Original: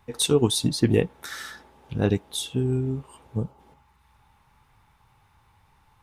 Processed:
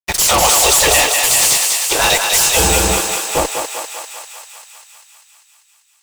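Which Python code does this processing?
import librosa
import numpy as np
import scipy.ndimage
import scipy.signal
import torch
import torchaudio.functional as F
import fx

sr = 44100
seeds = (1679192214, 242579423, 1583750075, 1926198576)

y = fx.spec_gate(x, sr, threshold_db=-20, keep='weak')
y = scipy.signal.sosfilt(scipy.signal.butter(2, 54.0, 'highpass', fs=sr, output='sos'), y)
y = fx.peak_eq(y, sr, hz=8100.0, db=12.0, octaves=1.1)
y = fx.fuzz(y, sr, gain_db=50.0, gate_db=-53.0)
y = fx.graphic_eq_15(y, sr, hz=(250, 1600, 10000), db=(-8, -5, -4))
y = fx.echo_thinned(y, sr, ms=197, feedback_pct=74, hz=560.0, wet_db=-3.5)
y = F.gain(torch.from_numpy(y), 3.5).numpy()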